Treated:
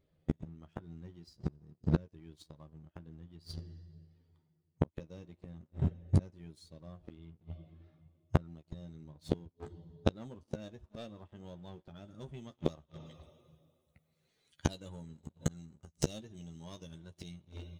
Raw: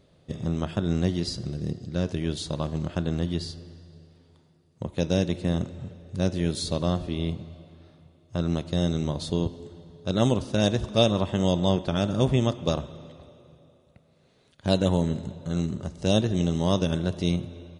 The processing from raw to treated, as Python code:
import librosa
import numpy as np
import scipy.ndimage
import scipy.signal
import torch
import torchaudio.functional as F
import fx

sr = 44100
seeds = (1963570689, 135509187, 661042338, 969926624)

y = fx.bin_expand(x, sr, power=1.5)
y = fx.high_shelf(y, sr, hz=3200.0, db=fx.steps((0.0, -5.5), (12.04, 5.0), (13.05, 11.0)))
y = fx.leveller(y, sr, passes=2)
y = fx.gate_flip(y, sr, shuts_db=-24.0, range_db=-39)
y = fx.doubler(y, sr, ms=13.0, db=-8.5)
y = y * 10.0 ** (10.0 / 20.0)